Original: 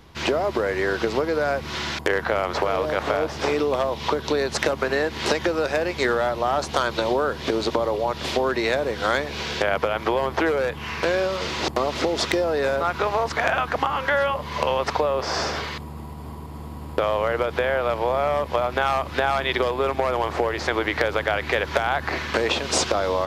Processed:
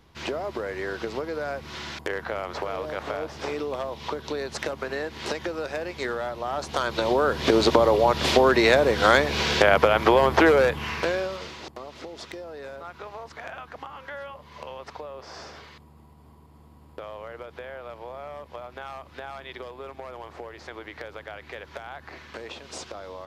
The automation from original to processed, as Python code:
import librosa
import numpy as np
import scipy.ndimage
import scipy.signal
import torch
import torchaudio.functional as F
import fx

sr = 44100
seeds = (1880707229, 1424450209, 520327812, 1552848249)

y = fx.gain(x, sr, db=fx.line((6.44, -8.0), (7.57, 4.5), (10.6, 4.5), (11.34, -7.5), (11.7, -16.5)))